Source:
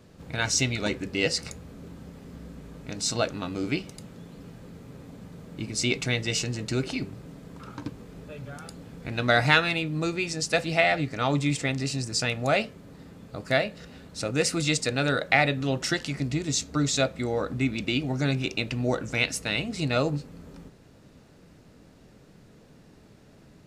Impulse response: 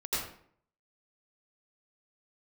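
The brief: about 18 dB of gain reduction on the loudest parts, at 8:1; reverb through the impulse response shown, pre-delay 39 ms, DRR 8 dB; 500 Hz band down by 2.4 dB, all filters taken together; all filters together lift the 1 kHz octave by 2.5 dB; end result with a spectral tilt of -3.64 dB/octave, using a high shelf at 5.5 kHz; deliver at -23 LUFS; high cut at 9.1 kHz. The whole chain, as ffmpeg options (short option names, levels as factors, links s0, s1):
-filter_complex "[0:a]lowpass=9100,equalizer=f=500:t=o:g=-5.5,equalizer=f=1000:t=o:g=6,highshelf=f=5500:g=7,acompressor=threshold=0.0224:ratio=8,asplit=2[s0][s1];[1:a]atrim=start_sample=2205,adelay=39[s2];[s1][s2]afir=irnorm=-1:irlink=0,volume=0.188[s3];[s0][s3]amix=inputs=2:normalize=0,volume=5.01"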